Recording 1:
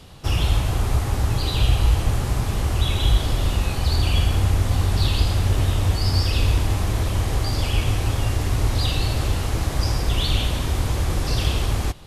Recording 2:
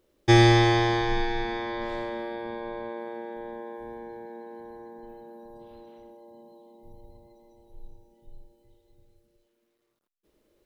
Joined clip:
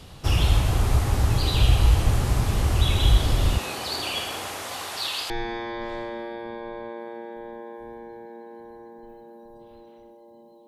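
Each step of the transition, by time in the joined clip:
recording 1
0:03.57–0:05.30: high-pass filter 290 Hz → 880 Hz
0:05.30: continue with recording 2 from 0:01.30

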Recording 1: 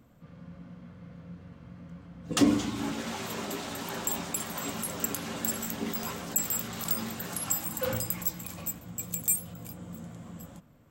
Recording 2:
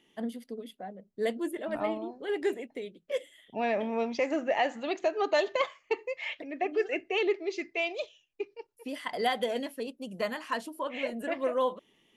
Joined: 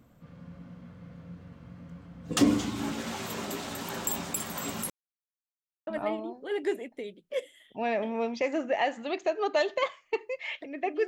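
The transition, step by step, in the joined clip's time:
recording 1
0:04.90–0:05.87: silence
0:05.87: continue with recording 2 from 0:01.65

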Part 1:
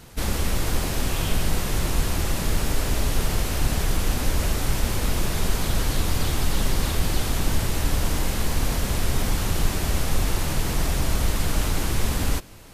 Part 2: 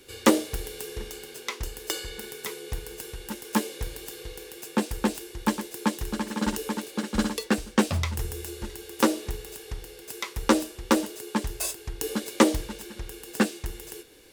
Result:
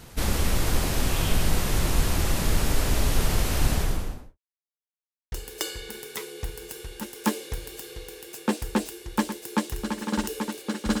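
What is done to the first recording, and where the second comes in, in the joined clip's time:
part 1
0:03.65–0:04.38: fade out and dull
0:04.38–0:05.32: silence
0:05.32: continue with part 2 from 0:01.61

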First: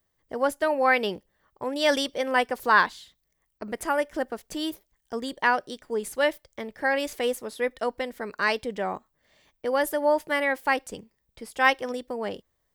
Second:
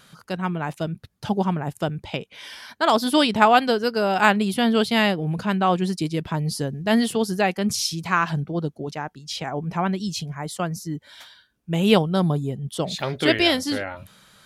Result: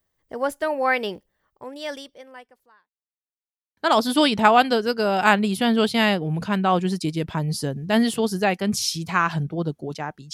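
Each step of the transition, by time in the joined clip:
first
0:01.11–0:02.95: fade out quadratic
0:02.95–0:03.77: silence
0:03.77: continue with second from 0:02.74

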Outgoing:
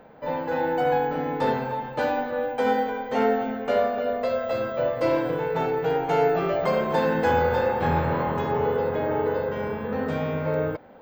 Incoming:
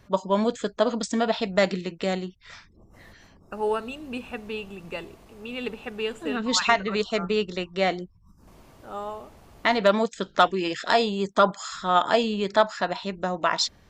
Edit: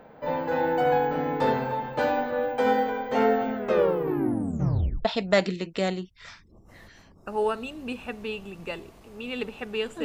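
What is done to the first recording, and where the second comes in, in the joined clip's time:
outgoing
0:03.55: tape stop 1.50 s
0:05.05: continue with incoming from 0:01.30

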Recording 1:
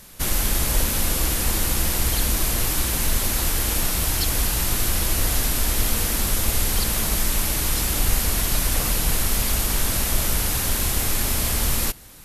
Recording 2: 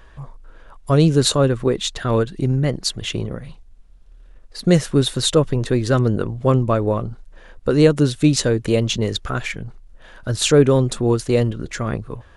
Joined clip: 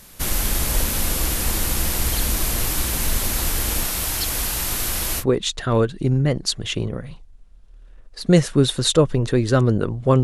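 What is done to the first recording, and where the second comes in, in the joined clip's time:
recording 1
0:03.83–0:05.24: low-shelf EQ 350 Hz −5.5 dB
0:05.21: continue with recording 2 from 0:01.59, crossfade 0.06 s

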